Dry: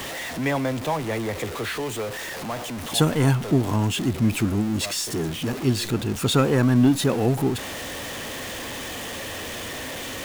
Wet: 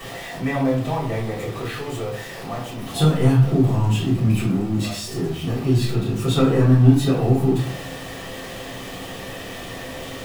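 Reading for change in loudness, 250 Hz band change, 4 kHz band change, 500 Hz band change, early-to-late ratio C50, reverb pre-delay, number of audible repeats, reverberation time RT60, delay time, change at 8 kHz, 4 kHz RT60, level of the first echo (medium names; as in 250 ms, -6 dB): +4.0 dB, +2.0 dB, -3.0 dB, +1.5 dB, 5.5 dB, 3 ms, no echo, 0.50 s, no echo, -5.5 dB, 0.40 s, no echo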